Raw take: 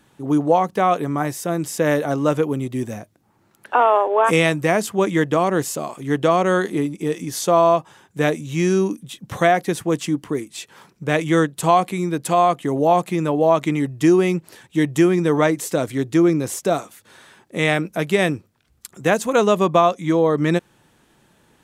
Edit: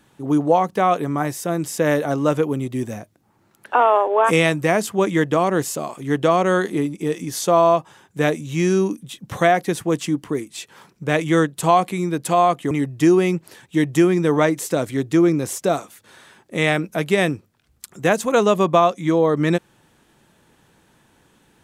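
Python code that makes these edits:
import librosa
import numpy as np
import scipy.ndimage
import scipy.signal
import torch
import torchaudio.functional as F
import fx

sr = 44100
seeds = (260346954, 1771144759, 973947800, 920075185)

y = fx.edit(x, sr, fx.cut(start_s=12.71, length_s=1.01), tone=tone)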